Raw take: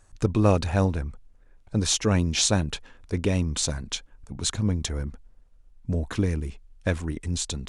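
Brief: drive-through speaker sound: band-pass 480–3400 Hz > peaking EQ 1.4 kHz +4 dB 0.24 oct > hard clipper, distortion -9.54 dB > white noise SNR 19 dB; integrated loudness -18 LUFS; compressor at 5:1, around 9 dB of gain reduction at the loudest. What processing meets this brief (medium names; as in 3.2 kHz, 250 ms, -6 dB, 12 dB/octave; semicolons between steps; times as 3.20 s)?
compression 5:1, threshold -26 dBFS; band-pass 480–3400 Hz; peaking EQ 1.4 kHz +4 dB 0.24 oct; hard clipper -33 dBFS; white noise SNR 19 dB; trim +23.5 dB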